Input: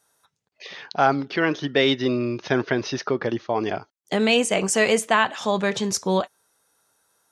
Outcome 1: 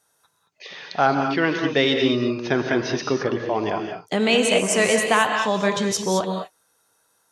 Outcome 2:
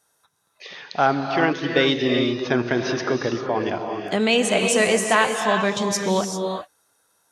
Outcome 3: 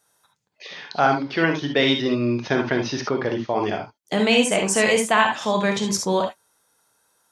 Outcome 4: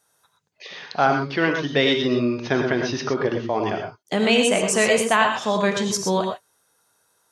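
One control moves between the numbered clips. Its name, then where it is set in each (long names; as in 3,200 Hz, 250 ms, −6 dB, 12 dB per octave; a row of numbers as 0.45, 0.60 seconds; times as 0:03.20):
reverb whose tail is shaped and stops, gate: 240, 420, 90, 140 milliseconds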